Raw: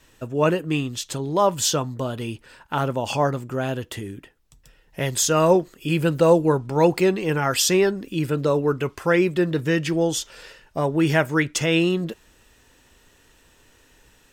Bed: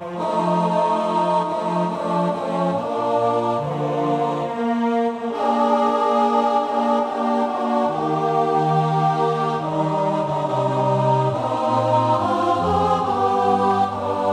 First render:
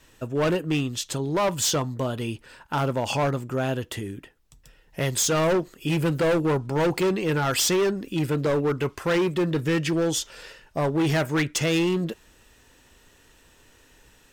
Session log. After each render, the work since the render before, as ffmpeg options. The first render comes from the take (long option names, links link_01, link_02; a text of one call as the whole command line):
ffmpeg -i in.wav -af "volume=19dB,asoftclip=hard,volume=-19dB" out.wav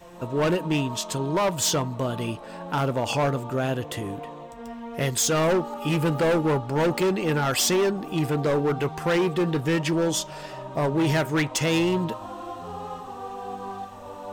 ffmpeg -i in.wav -i bed.wav -filter_complex "[1:a]volume=-17dB[link_01];[0:a][link_01]amix=inputs=2:normalize=0" out.wav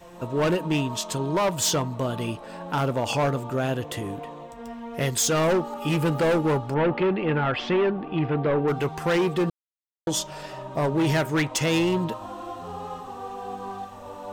ffmpeg -i in.wav -filter_complex "[0:a]asettb=1/sr,asplit=3[link_01][link_02][link_03];[link_01]atrim=end=6.744[link_04];[link_02]atrim=start=6.74:end=8.68,asetpts=PTS-STARTPTS,afade=type=in:duration=0.004:curve=qsin,afade=type=out:start_time=1.936:duration=0.004:curve=qsin,lowpass=frequency=3000:width=0.5412,lowpass=frequency=3000:width=1.3066[link_05];[link_03]atrim=start=8.676[link_06];[link_04][link_05]acrossfade=duration=0.004:curve1=hsin:curve2=qsin[link_07];[link_07][link_06]acrossfade=duration=0.004:curve1=qsin:curve2=hsin,asplit=3[link_08][link_09][link_10];[link_08]atrim=end=9.5,asetpts=PTS-STARTPTS,afade=type=out:start_time=9.496:duration=0.004:curve=hsin[link_11];[link_09]atrim=start=9.5:end=10.07,asetpts=PTS-STARTPTS,volume=0[link_12];[link_10]atrim=start=10.07,asetpts=PTS-STARTPTS,afade=type=in:duration=0.004:curve=hsin[link_13];[link_11][link_12][link_13]concat=n=3:v=0:a=1" out.wav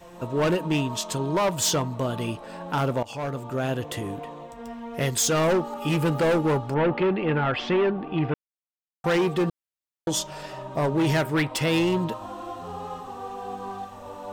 ffmpeg -i in.wav -filter_complex "[0:a]asettb=1/sr,asplit=3[link_01][link_02][link_03];[link_01]atrim=end=11.244[link_04];[link_02]atrim=start=11.24:end=11.78,asetpts=PTS-STARTPTS,afade=type=in:duration=0.004:curve=qsin,afade=type=out:start_time=0.536:duration=0.004:curve=qsin,equalizer=frequency=6500:width_type=o:width=0.29:gain=-11.5[link_05];[link_03]atrim=start=11.776[link_06];[link_04][link_05]acrossfade=duration=0.004:curve1=hsin:curve2=qsin[link_07];[link_07][link_06]acrossfade=duration=0.004:curve1=qsin:curve2=hsin,asplit=4[link_08][link_09][link_10][link_11];[link_08]atrim=end=3.03,asetpts=PTS-STARTPTS,afade=type=out:start_time=3.026:duration=0.004:curve=hsin:silence=0.141254[link_12];[link_09]atrim=start=3.03:end=8.34,asetpts=PTS-STARTPTS,afade=type=in:duration=0.93:curve=qsin:silence=0.141254,afade=type=out:start_time=5.306:duration=0.004:curve=hsin[link_13];[link_10]atrim=start=8.34:end=9.04,asetpts=PTS-STARTPTS,volume=0[link_14];[link_11]atrim=start=9.04,asetpts=PTS-STARTPTS,afade=type=in:duration=0.004:curve=hsin[link_15];[link_12][link_13][link_14][link_15]concat=n=4:v=0:a=1" out.wav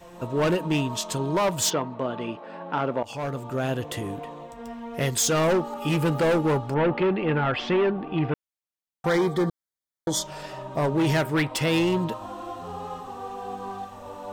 ffmpeg -i in.wav -filter_complex "[0:a]asplit=3[link_01][link_02][link_03];[link_01]afade=type=out:start_time=1.69:duration=0.02[link_04];[link_02]highpass=210,lowpass=2700,afade=type=in:start_time=1.69:duration=0.02,afade=type=out:start_time=3.02:duration=0.02[link_05];[link_03]afade=type=in:start_time=3.02:duration=0.02[link_06];[link_04][link_05][link_06]amix=inputs=3:normalize=0,asettb=1/sr,asplit=3[link_07][link_08][link_09];[link_07]atrim=end=9.094[link_10];[link_08]atrim=start=9.09:end=10.23,asetpts=PTS-STARTPTS,afade=type=in:duration=0.004:curve=qsin,afade=type=out:start_time=1.136:duration=0.004:curve=qsin,asuperstop=centerf=2700:order=4:qfactor=3.1[link_11];[link_09]atrim=start=10.226[link_12];[link_10][link_11]acrossfade=duration=0.004:curve1=hsin:curve2=qsin[link_13];[link_13][link_12]acrossfade=duration=0.004:curve1=qsin:curve2=hsin" out.wav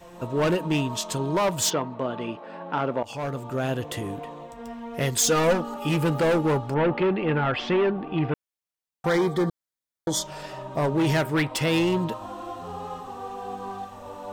ffmpeg -i in.wav -filter_complex "[0:a]asettb=1/sr,asplit=3[link_01][link_02][link_03];[link_01]atrim=end=5.184[link_04];[link_02]atrim=start=5.18:end=5.76,asetpts=PTS-STARTPTS,afade=type=in:duration=0.004:curve=qsin,afade=type=out:start_time=0.576:duration=0.004:curve=qsin,aecho=1:1:4.1:0.63,atrim=end_sample=25578[link_05];[link_03]atrim=start=5.756[link_06];[link_04][link_05]acrossfade=duration=0.004:curve1=hsin:curve2=qsin[link_07];[link_07][link_06]acrossfade=duration=0.004:curve1=qsin:curve2=hsin" out.wav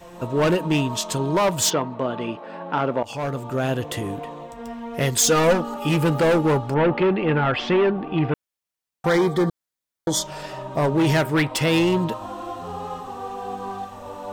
ffmpeg -i in.wav -af "volume=3.5dB" out.wav